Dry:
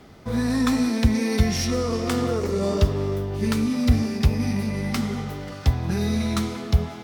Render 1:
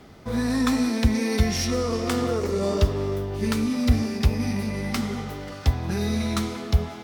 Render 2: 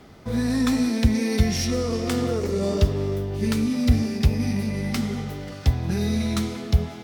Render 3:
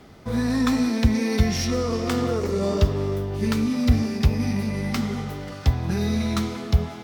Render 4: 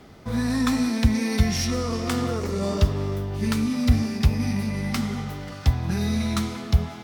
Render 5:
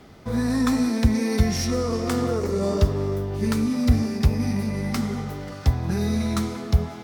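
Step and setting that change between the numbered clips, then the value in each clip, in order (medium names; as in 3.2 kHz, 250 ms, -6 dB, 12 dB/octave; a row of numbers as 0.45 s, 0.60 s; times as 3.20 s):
dynamic bell, frequency: 140 Hz, 1.1 kHz, 9.7 kHz, 430 Hz, 3 kHz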